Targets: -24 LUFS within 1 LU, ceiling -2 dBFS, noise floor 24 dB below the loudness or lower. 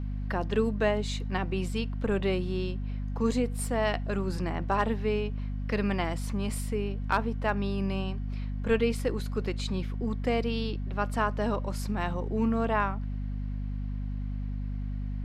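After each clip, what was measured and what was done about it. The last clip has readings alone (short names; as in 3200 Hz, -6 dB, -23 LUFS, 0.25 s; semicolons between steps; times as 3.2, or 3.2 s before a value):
hum 50 Hz; harmonics up to 250 Hz; hum level -30 dBFS; loudness -30.5 LUFS; peak -13.5 dBFS; loudness target -24.0 LUFS
-> notches 50/100/150/200/250 Hz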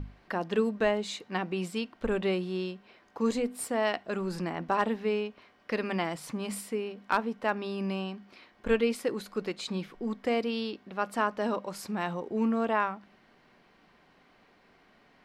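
hum none; loudness -31.5 LUFS; peak -13.5 dBFS; loudness target -24.0 LUFS
-> gain +7.5 dB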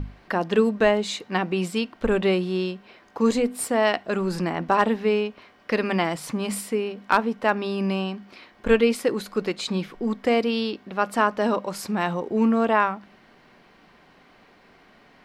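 loudness -24.0 LUFS; peak -6.0 dBFS; noise floor -55 dBFS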